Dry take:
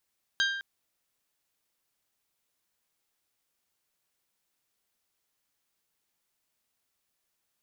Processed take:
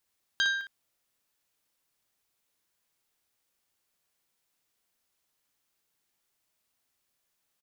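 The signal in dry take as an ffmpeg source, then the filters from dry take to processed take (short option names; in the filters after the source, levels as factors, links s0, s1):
-f lavfi -i "aevalsrc='0.0668*pow(10,-3*t/0.99)*sin(2*PI*1590*t)+0.0473*pow(10,-3*t/0.609)*sin(2*PI*3180*t)+0.0335*pow(10,-3*t/0.536)*sin(2*PI*3816*t)+0.0237*pow(10,-3*t/0.459)*sin(2*PI*4770*t)+0.0168*pow(10,-3*t/0.375)*sin(2*PI*6360*t)':d=0.21:s=44100"
-af "aecho=1:1:32|59:0.168|0.501"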